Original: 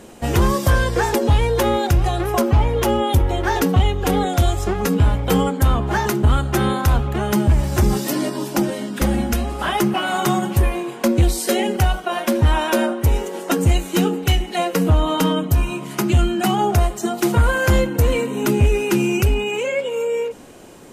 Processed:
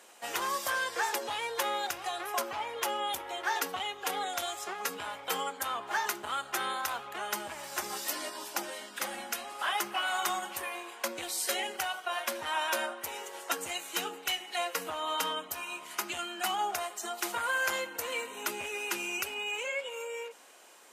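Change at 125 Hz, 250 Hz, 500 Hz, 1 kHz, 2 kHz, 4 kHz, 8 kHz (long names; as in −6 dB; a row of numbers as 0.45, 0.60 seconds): below −40 dB, −27.5 dB, −18.0 dB, −10.5 dB, −7.5 dB, −7.0 dB, −7.0 dB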